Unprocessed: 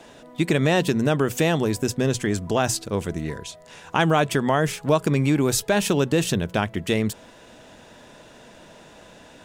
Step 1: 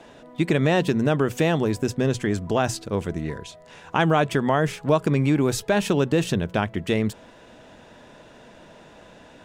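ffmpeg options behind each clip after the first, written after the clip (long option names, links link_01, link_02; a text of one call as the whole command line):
ffmpeg -i in.wav -af "highshelf=frequency=4900:gain=-9.5" out.wav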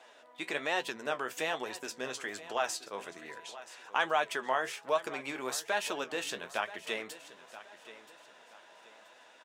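ffmpeg -i in.wav -af "highpass=760,flanger=delay=7.8:depth=8.1:regen=48:speed=1.2:shape=sinusoidal,aecho=1:1:978|1956|2934:0.158|0.0523|0.0173,volume=-1.5dB" out.wav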